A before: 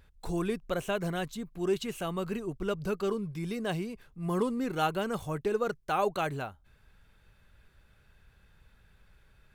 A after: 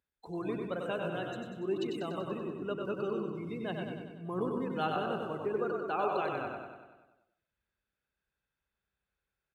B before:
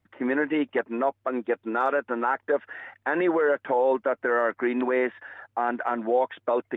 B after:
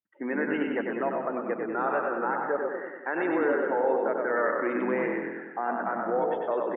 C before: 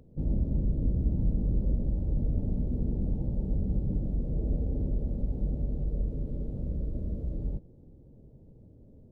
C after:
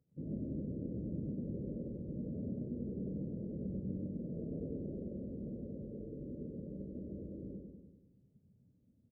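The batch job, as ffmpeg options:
-filter_complex "[0:a]asplit=2[a][b];[b]asplit=5[c][d][e][f][g];[c]adelay=121,afreqshift=-45,volume=-5dB[h];[d]adelay=242,afreqshift=-90,volume=-13.4dB[i];[e]adelay=363,afreqshift=-135,volume=-21.8dB[j];[f]adelay=484,afreqshift=-180,volume=-30.2dB[k];[g]adelay=605,afreqshift=-225,volume=-38.6dB[l];[h][i][j][k][l]amix=inputs=5:normalize=0[m];[a][m]amix=inputs=2:normalize=0,afftdn=nr=20:nf=-40,highpass=190,asplit=2[n][o];[o]aecho=0:1:96|192|288|384|480|576|672|768:0.562|0.332|0.196|0.115|0.0681|0.0402|0.0237|0.014[p];[n][p]amix=inputs=2:normalize=0,volume=-5dB"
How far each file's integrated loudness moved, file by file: -3.0, -2.5, -10.5 LU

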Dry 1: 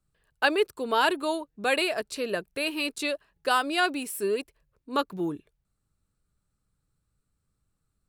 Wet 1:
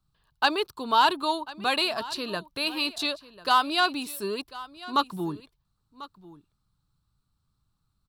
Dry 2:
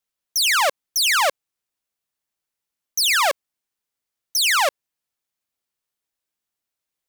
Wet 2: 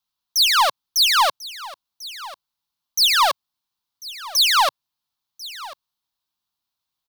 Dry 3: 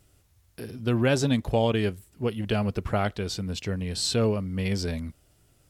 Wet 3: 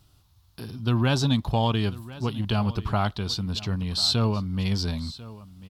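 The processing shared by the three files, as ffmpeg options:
-af "equalizer=f=125:t=o:w=1:g=3,equalizer=f=500:t=o:w=1:g=-10,equalizer=f=1k:t=o:w=1:g=9,equalizer=f=2k:t=o:w=1:g=-9,equalizer=f=4k:t=o:w=1:g=9,equalizer=f=8k:t=o:w=1:g=-7,asoftclip=type=tanh:threshold=-10dB,aecho=1:1:1044:0.126,volume=1.5dB"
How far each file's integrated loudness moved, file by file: +1.0, +2.0, +1.5 LU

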